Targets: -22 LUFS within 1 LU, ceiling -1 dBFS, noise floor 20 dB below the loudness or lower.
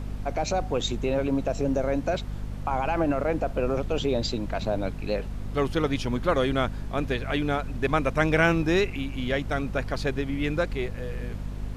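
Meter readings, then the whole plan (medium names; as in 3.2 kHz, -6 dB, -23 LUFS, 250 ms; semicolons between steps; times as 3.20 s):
hum 50 Hz; highest harmonic 250 Hz; hum level -32 dBFS; noise floor -35 dBFS; noise floor target -47 dBFS; loudness -27.0 LUFS; peak level -8.0 dBFS; loudness target -22.0 LUFS
-> hum notches 50/100/150/200/250 Hz; noise print and reduce 12 dB; trim +5 dB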